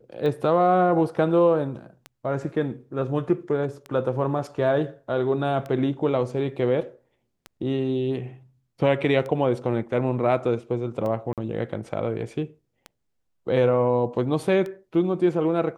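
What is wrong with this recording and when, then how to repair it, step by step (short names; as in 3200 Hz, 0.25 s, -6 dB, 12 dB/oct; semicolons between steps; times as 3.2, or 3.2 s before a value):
tick 33 1/3 rpm -21 dBFS
11.33–11.38 gap 47 ms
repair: de-click; interpolate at 11.33, 47 ms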